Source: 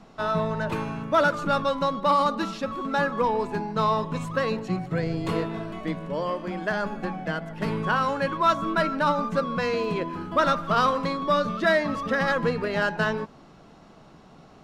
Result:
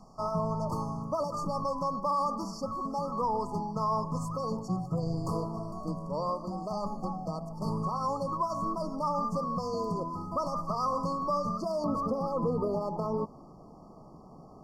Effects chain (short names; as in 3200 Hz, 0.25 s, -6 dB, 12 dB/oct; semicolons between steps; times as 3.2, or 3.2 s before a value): bell 360 Hz -9 dB 1.4 oct, from 11.84 s 6300 Hz; limiter -20.5 dBFS, peak gain reduction 9.5 dB; brick-wall FIR band-stop 1300–4400 Hz